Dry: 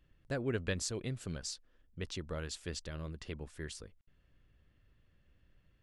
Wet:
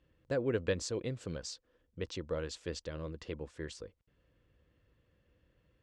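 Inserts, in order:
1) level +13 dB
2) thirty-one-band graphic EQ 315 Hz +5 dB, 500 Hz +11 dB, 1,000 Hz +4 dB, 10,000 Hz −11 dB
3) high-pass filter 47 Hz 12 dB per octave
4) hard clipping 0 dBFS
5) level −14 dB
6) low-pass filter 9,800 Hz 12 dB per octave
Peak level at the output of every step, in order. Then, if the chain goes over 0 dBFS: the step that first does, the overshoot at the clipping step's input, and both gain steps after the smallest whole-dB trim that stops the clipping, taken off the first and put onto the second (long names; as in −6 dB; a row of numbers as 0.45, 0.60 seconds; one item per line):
−9.0, −7.0, −5.5, −5.5, −19.5, −19.5 dBFS
no step passes full scale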